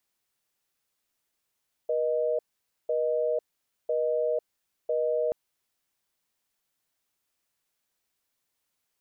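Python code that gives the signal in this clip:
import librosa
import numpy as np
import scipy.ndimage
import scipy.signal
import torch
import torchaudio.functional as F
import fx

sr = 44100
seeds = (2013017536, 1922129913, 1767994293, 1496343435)

y = fx.call_progress(sr, length_s=3.43, kind='busy tone', level_db=-26.5)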